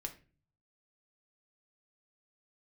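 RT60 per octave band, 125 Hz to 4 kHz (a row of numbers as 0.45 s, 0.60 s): 0.90 s, 0.60 s, 0.45 s, 0.30 s, 0.35 s, 0.30 s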